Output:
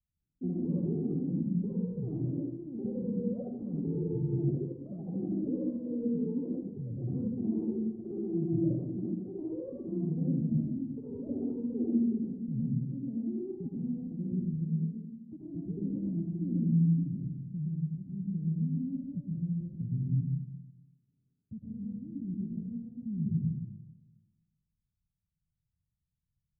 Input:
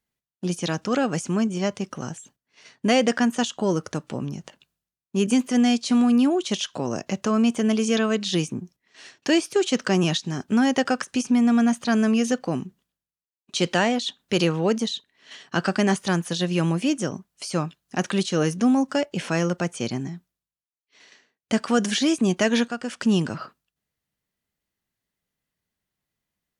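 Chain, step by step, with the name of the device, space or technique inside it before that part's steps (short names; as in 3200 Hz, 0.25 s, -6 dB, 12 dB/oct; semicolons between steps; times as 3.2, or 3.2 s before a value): club heard from the street (limiter -18 dBFS, peak gain reduction 11 dB; LPF 140 Hz 24 dB/oct; reverb RT60 1.4 s, pre-delay 0.104 s, DRR -5.5 dB); echoes that change speed 0.107 s, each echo +6 st, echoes 2; gain +2.5 dB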